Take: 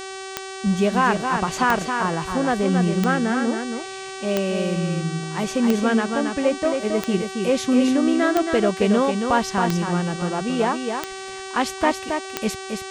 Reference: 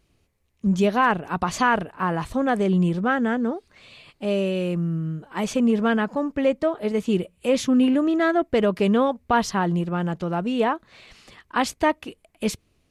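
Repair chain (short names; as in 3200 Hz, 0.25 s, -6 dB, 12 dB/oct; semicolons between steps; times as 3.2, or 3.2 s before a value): de-click; de-hum 383.2 Hz, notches 24; inverse comb 0.273 s -5.5 dB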